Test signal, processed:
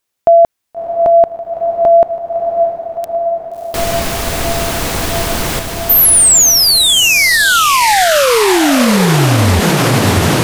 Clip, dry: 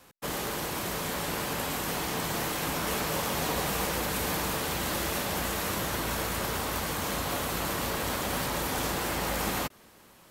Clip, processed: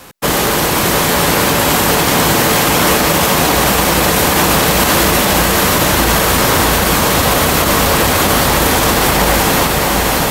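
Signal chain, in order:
feedback delay with all-pass diffusion 644 ms, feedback 76%, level −6 dB
boost into a limiter +20.5 dB
level −1 dB

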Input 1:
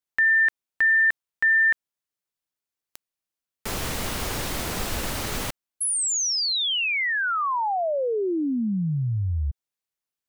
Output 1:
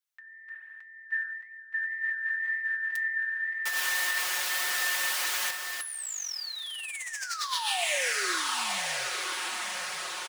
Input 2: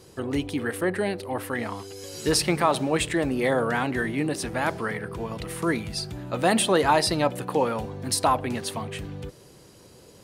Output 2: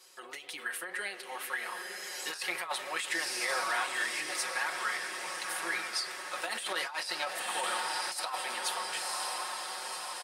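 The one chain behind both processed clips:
high-pass filter 1,200 Hz 12 dB per octave
comb filter 5.5 ms, depth 78%
feedback delay with all-pass diffusion 1,035 ms, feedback 65%, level −7 dB
spring reverb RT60 2.4 s, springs 30/51 ms, chirp 60 ms, DRR 15.5 dB
compressor whose output falls as the input rises −27 dBFS, ratio −0.5
flanger 1.9 Hz, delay 5.8 ms, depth 6.3 ms, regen +71%
every ending faded ahead of time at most 120 dB per second

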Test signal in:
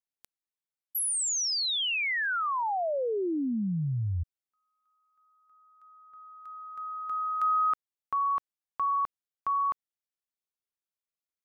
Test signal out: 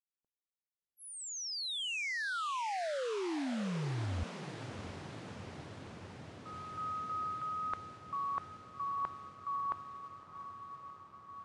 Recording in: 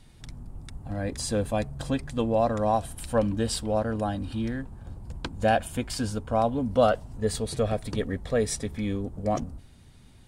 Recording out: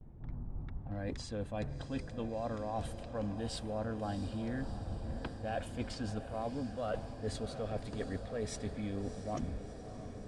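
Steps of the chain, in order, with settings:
low-pass that shuts in the quiet parts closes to 630 Hz, open at −26 dBFS
noise gate with hold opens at −50 dBFS, range −21 dB
reversed playback
downward compressor 10 to 1, threshold −36 dBFS
reversed playback
high-frequency loss of the air 73 metres
on a send: feedback delay with all-pass diffusion 679 ms, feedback 78%, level −11 dB
on the sum: one half of a high-frequency compander decoder only
level +1 dB

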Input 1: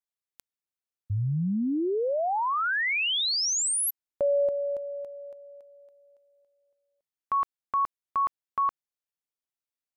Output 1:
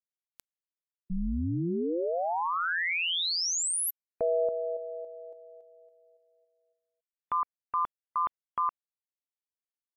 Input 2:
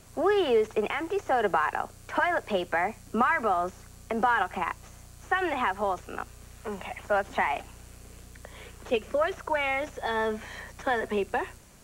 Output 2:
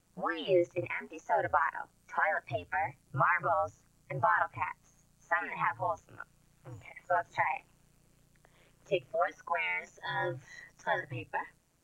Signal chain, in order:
ring modulation 86 Hz
noise reduction from a noise print of the clip's start 15 dB

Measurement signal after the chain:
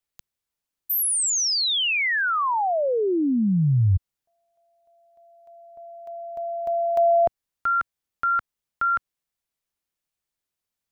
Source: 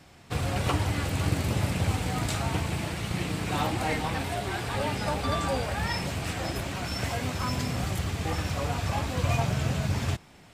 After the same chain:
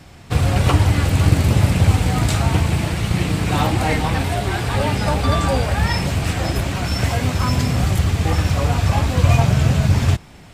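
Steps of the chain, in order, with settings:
low-shelf EQ 130 Hz +8.5 dB
level +8 dB

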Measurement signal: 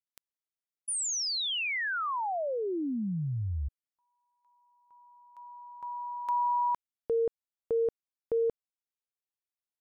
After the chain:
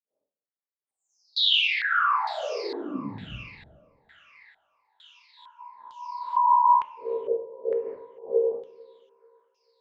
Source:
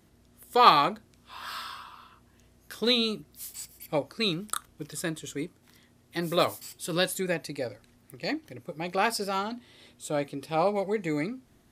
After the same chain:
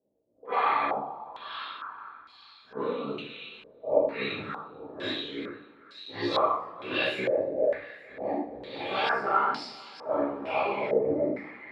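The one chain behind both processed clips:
random phases in long frames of 200 ms
downward expander −50 dBFS, range −12 dB
high-pass filter 220 Hz 12 dB per octave
low-pass that shuts in the quiet parts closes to 660 Hz, open at −24.5 dBFS
downward compressor 5 to 1, threshold −27 dBFS
flanger 1.1 Hz, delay 3.6 ms, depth 7.6 ms, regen +57%
amplitude modulation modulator 65 Hz, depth 100%
on a send: feedback echo with a high-pass in the loop 440 ms, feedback 81%, high-pass 1,100 Hz, level −15.5 dB
on the sum: coupled-rooms reverb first 0.31 s, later 1.5 s, from −18 dB, DRR −9 dB
low-pass on a step sequencer 2.2 Hz 590–4,800 Hz

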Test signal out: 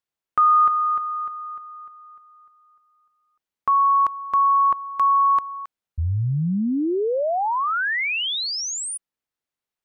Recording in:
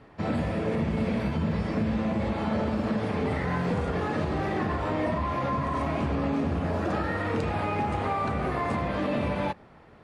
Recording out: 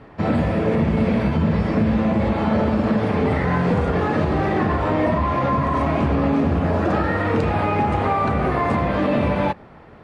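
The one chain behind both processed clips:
high-shelf EQ 4,200 Hz −8.5 dB
level +8.5 dB

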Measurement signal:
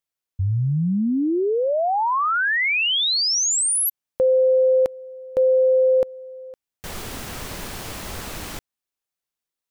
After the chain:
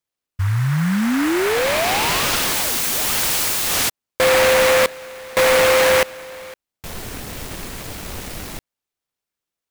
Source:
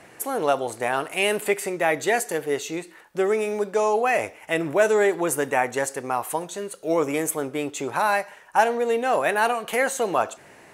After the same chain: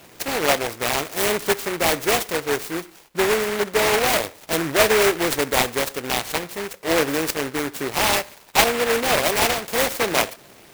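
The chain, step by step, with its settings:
samples in bit-reversed order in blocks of 16 samples
short delay modulated by noise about 1,400 Hz, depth 0.2 ms
level +2.5 dB

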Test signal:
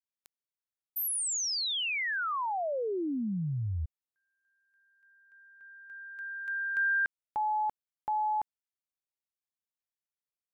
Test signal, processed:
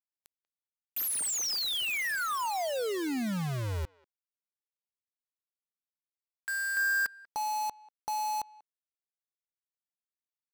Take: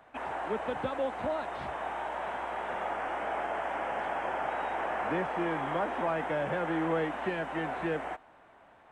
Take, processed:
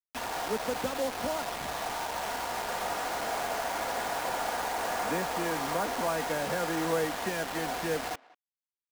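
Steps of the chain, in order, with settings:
comb filter 4.2 ms, depth 31%
bit-depth reduction 6 bits, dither none
far-end echo of a speakerphone 190 ms, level −22 dB

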